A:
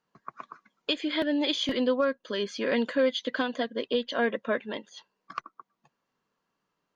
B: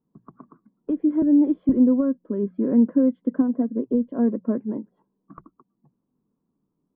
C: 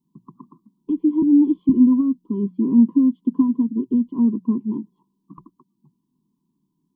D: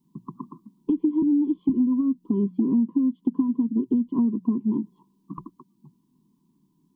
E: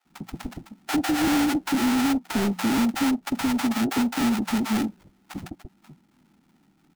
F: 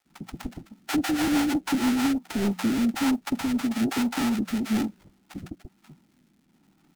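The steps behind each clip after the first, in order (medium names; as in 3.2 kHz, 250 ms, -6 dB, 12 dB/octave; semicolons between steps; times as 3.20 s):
low-pass 1 kHz 24 dB/octave; resonant low shelf 410 Hz +12.5 dB, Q 1.5; hum notches 60/120/180 Hz; trim -2.5 dB
FFT filter 100 Hz 0 dB, 160 Hz +9 dB, 370 Hz +5 dB, 610 Hz -30 dB, 1 kHz +12 dB, 1.5 kHz -29 dB, 3 kHz +9 dB; trim -3.5 dB
compression 6:1, threshold -26 dBFS, peak gain reduction 15.5 dB; trim +6 dB
overdrive pedal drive 23 dB, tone 1 kHz, clips at -11 dBFS; sample-rate reducer 1.1 kHz, jitter 20%; bands offset in time highs, lows 50 ms, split 660 Hz; trim -3 dB
block-companded coder 7-bit; rotary cabinet horn 6.3 Hz, later 1.1 Hz, at 1.86 s; crackle 150 per s -56 dBFS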